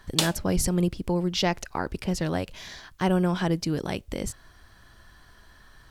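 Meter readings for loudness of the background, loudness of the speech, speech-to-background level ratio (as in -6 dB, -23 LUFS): -28.5 LUFS, -27.5 LUFS, 1.0 dB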